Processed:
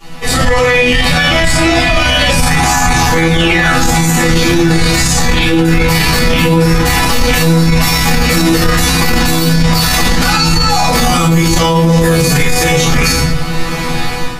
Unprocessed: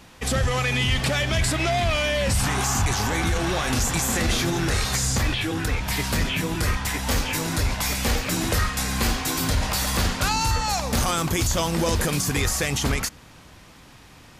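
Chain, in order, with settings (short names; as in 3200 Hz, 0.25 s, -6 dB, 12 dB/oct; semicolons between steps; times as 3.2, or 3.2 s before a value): AGC gain up to 15.5 dB; painted sound fall, 3.3–3.72, 1200–3700 Hz -14 dBFS; resonator bank E3 fifth, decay 0.26 s; shoebox room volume 130 m³, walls mixed, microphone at 3.3 m; maximiser +18.5 dB; gain -1 dB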